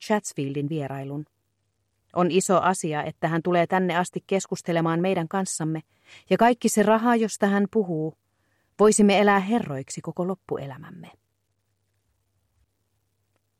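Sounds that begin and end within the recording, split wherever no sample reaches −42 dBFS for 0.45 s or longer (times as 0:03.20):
0:02.14–0:08.11
0:08.79–0:11.10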